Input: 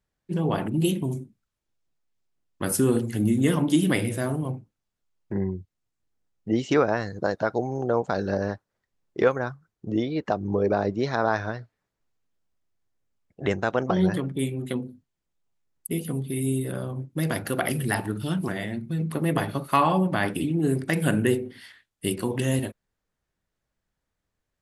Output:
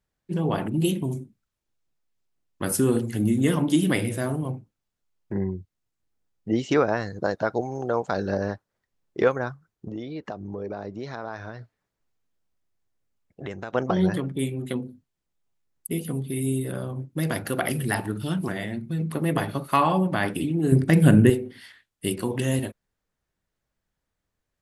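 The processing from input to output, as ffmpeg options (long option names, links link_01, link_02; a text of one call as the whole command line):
ffmpeg -i in.wav -filter_complex "[0:a]asettb=1/sr,asplit=3[link_01][link_02][link_03];[link_01]atrim=end=7.614[link_04];[link_02]atrim=start=7.61:end=8.11,asetpts=PTS-STARTPTS,afade=type=in:duration=0.004:curve=qsin,afade=type=out:start_time=0.496:duration=0.004:curve=qsin,tiltshelf=frequency=820:gain=-3.5[link_05];[link_03]atrim=start=8.106[link_06];[link_04][link_05]acrossfade=duration=0.004:curve1=hsin:curve2=qsin[link_07];[link_07][link_06]acrossfade=duration=0.004:curve1=qsin:curve2=hsin,asettb=1/sr,asplit=3[link_08][link_09][link_10];[link_08]atrim=end=9.884[link_11];[link_09]atrim=start=9.88:end=13.73,asetpts=PTS-STARTPTS,afade=type=in:duration=0.004:curve=qsin,afade=type=out:start_time=3.846:duration=0.004:curve=qsin,acompressor=threshold=-34dB:ratio=2.5:attack=3.2:release=140:knee=1:detection=peak[link_12];[link_10]atrim=start=13.726[link_13];[link_11][link_12]acrossfade=duration=0.004:curve1=hsin:curve2=qsin[link_14];[link_14][link_13]acrossfade=duration=0.004:curve1=qsin:curve2=hsin,asettb=1/sr,asplit=3[link_15][link_16][link_17];[link_15]atrim=end=20.724[link_18];[link_16]atrim=start=20.72:end=21.3,asetpts=PTS-STARTPTS,afade=type=in:duration=0.004:curve=qsin,afade=type=out:start_time=0.576:duration=0.004:curve=qsin,lowshelf=frequency=350:gain=11.5[link_19];[link_17]atrim=start=21.296[link_20];[link_18][link_19]acrossfade=duration=0.004:curve1=hsin:curve2=qsin[link_21];[link_21][link_20]acrossfade=duration=0.004:curve1=qsin:curve2=hsin" out.wav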